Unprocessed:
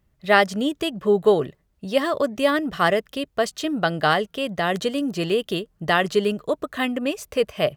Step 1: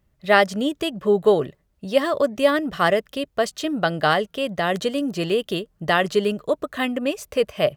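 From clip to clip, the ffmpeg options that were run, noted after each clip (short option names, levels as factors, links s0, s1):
-af "equalizer=f=570:t=o:w=0.25:g=3"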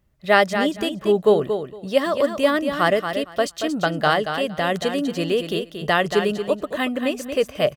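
-af "aecho=1:1:230|460|690:0.398|0.0677|0.0115"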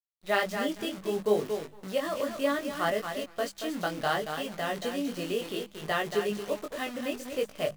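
-af "acrusher=bits=6:dc=4:mix=0:aa=0.000001,flanger=delay=19:depth=3:speed=0.66,bandreject=f=50:t=h:w=6,bandreject=f=100:t=h:w=6,bandreject=f=150:t=h:w=6,bandreject=f=200:t=h:w=6,volume=0.447"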